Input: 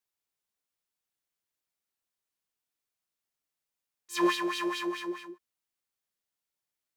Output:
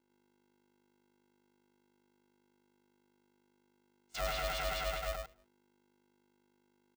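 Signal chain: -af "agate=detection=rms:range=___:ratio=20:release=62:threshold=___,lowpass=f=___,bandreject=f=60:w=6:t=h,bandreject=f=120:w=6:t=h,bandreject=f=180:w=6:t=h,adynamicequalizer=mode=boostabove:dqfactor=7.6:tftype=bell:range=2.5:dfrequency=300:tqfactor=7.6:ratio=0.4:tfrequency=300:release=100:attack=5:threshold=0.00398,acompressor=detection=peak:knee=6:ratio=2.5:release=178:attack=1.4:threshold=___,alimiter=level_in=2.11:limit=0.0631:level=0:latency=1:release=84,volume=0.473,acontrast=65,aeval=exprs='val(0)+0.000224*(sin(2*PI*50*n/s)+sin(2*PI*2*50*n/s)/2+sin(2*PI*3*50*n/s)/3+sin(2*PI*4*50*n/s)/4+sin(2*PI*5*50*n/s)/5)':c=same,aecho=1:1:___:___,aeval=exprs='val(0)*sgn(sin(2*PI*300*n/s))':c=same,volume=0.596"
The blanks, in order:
0.0562, 0.0126, 6800, 0.0126, 101, 0.596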